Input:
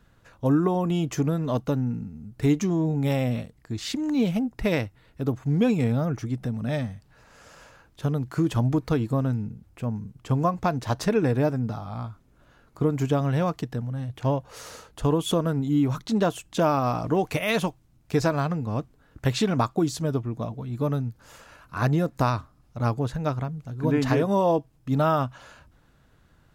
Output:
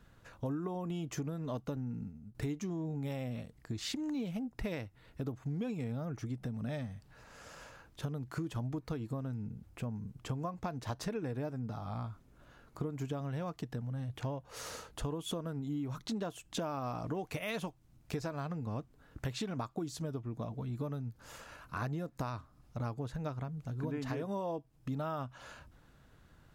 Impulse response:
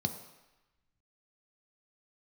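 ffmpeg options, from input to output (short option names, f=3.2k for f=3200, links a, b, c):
-filter_complex "[0:a]asettb=1/sr,asplit=3[a][b][c];[a]atrim=end=1.764[d];[b]atrim=start=1.76:end=2.35,asetpts=PTS-STARTPTS,afade=t=in:d=0.004:c=qsin,afade=t=out:st=0.586:d=0.004:c=qsin,agate=range=-33dB:threshold=-32dB:ratio=3:detection=peak[e];[c]atrim=start=2.346[f];[d][e]acrossfade=d=0.004:c1=hsin:c2=qsin[g];[g][f]acrossfade=d=0.004:c1=qsin:c2=hsin,acompressor=threshold=-34dB:ratio=5,volume=-2dB"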